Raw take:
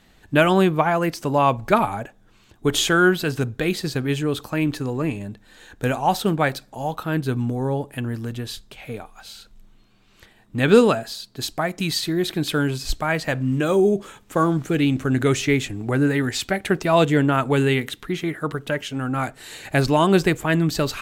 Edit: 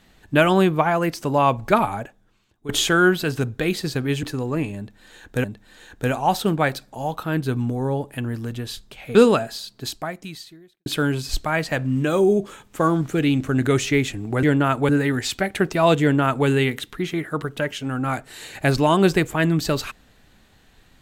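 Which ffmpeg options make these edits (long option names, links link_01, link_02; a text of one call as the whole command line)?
ffmpeg -i in.wav -filter_complex "[0:a]asplit=8[link_01][link_02][link_03][link_04][link_05][link_06][link_07][link_08];[link_01]atrim=end=2.69,asetpts=PTS-STARTPTS,afade=type=out:start_time=2:duration=0.69:curve=qua:silence=0.16788[link_09];[link_02]atrim=start=2.69:end=4.232,asetpts=PTS-STARTPTS,afade=type=in:duration=0.004:curve=hsin:silence=0.16788[link_10];[link_03]atrim=start=4.698:end=5.912[link_11];[link_04]atrim=start=5.238:end=8.952[link_12];[link_05]atrim=start=10.708:end=12.42,asetpts=PTS-STARTPTS,afade=type=out:start_time=0.622:duration=1.09:curve=qua[link_13];[link_06]atrim=start=12.42:end=15.992,asetpts=PTS-STARTPTS,afade=type=in:duration=0.004:curve=hsin[link_14];[link_07]atrim=start=17.108:end=17.572[link_15];[link_08]atrim=start=15.988[link_16];[link_09][link_10]concat=n=2:v=0:a=1[link_17];[link_17][link_11]acrossfade=duration=0.004:curve1=hsin:curve2=hsin[link_18];[link_18][link_12]acrossfade=duration=0.004:curve1=hsin:curve2=hsin[link_19];[link_13][link_14]concat=n=2:v=0:a=1[link_20];[link_19][link_20]acrossfade=duration=0.004:curve1=hsin:curve2=hsin[link_21];[link_21][link_15]acrossfade=duration=0.004:curve1=hsin:curve2=hsin[link_22];[link_22][link_16]acrossfade=duration=0.004:curve1=hsin:curve2=hsin" out.wav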